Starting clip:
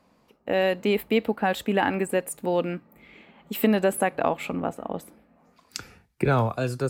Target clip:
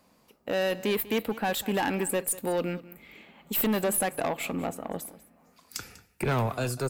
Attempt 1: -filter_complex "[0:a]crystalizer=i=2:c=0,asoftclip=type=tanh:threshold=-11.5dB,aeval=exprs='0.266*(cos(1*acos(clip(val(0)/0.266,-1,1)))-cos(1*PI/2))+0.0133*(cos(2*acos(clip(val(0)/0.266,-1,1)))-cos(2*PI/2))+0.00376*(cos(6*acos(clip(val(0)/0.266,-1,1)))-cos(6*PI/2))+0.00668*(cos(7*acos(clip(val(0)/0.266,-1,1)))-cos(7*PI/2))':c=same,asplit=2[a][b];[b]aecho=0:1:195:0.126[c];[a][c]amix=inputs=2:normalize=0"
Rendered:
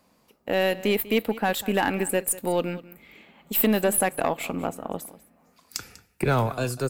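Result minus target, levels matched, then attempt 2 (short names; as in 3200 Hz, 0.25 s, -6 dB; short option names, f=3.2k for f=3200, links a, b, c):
soft clip: distortion -11 dB
-filter_complex "[0:a]crystalizer=i=2:c=0,asoftclip=type=tanh:threshold=-21dB,aeval=exprs='0.266*(cos(1*acos(clip(val(0)/0.266,-1,1)))-cos(1*PI/2))+0.0133*(cos(2*acos(clip(val(0)/0.266,-1,1)))-cos(2*PI/2))+0.00376*(cos(6*acos(clip(val(0)/0.266,-1,1)))-cos(6*PI/2))+0.00668*(cos(7*acos(clip(val(0)/0.266,-1,1)))-cos(7*PI/2))':c=same,asplit=2[a][b];[b]aecho=0:1:195:0.126[c];[a][c]amix=inputs=2:normalize=0"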